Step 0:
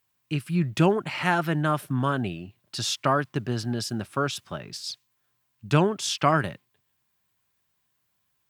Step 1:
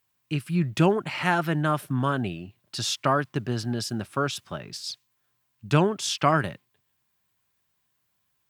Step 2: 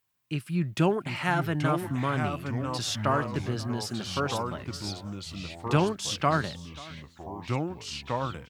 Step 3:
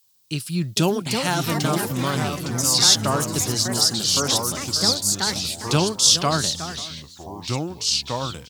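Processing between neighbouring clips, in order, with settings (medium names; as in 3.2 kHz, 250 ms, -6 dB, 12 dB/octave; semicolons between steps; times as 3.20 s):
no audible change
delay 536 ms -21 dB; ever faster or slower copies 685 ms, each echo -3 st, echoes 3, each echo -6 dB; trim -3.5 dB
resonant high shelf 3.1 kHz +13 dB, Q 1.5; ever faster or slower copies 532 ms, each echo +5 st, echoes 2, each echo -6 dB; trim +3.5 dB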